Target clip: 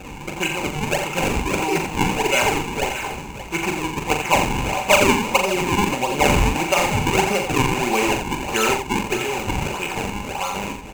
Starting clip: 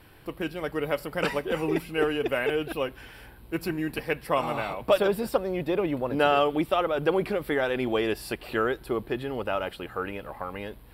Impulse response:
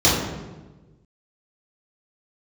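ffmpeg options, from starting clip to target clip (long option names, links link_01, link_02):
-filter_complex "[0:a]aeval=exprs='val(0)+0.5*0.0158*sgn(val(0))':channel_layout=same,equalizer=frequency=4000:width=0.4:gain=5.5,aecho=1:1:5.2:0.52,acrusher=samples=40:mix=1:aa=0.000001:lfo=1:lforange=64:lforate=1.6,superequalizer=9b=2.82:12b=3.55:15b=2.24,asplit=2[link_01][link_02];[link_02]aecho=0:1:41|86|578:0.501|0.422|0.237[link_03];[link_01][link_03]amix=inputs=2:normalize=0"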